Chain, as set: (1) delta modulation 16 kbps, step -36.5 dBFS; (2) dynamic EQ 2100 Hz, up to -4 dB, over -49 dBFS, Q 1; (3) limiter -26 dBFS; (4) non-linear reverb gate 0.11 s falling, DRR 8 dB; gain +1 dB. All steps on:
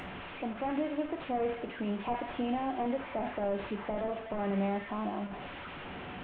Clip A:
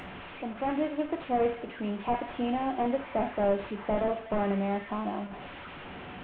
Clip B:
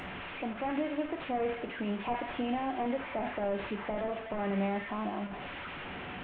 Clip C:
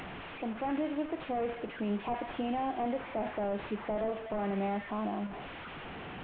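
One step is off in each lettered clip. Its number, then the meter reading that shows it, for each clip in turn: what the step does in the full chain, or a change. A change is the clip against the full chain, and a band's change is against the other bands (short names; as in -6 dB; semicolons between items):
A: 3, mean gain reduction 1.5 dB; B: 2, momentary loudness spread change -2 LU; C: 4, crest factor change -3.5 dB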